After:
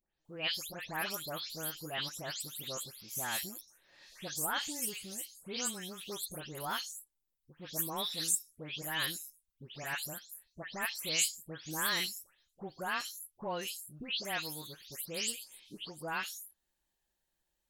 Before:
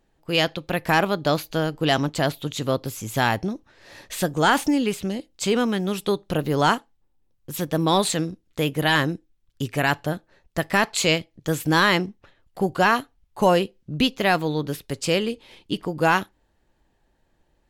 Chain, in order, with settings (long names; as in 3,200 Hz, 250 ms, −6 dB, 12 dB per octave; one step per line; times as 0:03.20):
every frequency bin delayed by itself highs late, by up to 251 ms
first-order pre-emphasis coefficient 0.9
level −2.5 dB